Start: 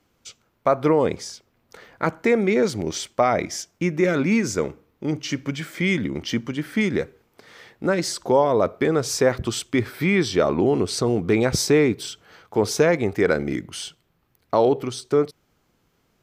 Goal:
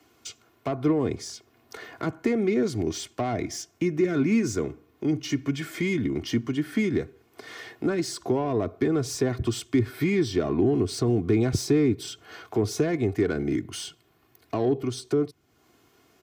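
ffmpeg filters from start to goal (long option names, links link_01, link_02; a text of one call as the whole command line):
ffmpeg -i in.wav -filter_complex "[0:a]highpass=110,aecho=1:1:2.8:0.63,acrossover=split=220[link_01][link_02];[link_02]acompressor=threshold=-44dB:ratio=2[link_03];[link_01][link_03]amix=inputs=2:normalize=0,acrossover=split=510[link_04][link_05];[link_05]asoftclip=type=tanh:threshold=-33dB[link_06];[link_04][link_06]amix=inputs=2:normalize=0,volume=5.5dB" out.wav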